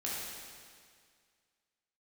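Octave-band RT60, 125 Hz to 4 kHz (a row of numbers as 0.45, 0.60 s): 2.0, 2.0, 2.0, 2.0, 2.0, 1.9 s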